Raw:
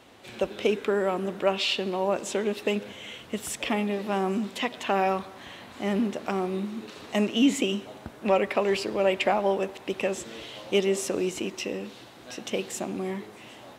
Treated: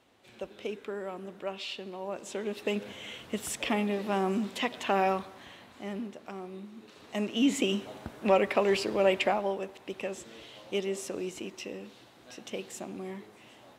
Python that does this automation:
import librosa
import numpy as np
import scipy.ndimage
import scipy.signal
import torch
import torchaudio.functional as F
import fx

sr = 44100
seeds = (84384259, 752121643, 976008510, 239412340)

y = fx.gain(x, sr, db=fx.line((2.01, -12.0), (2.91, -2.0), (5.08, -2.0), (6.16, -13.0), (6.71, -13.0), (7.72, -1.0), (9.15, -1.0), (9.57, -8.0)))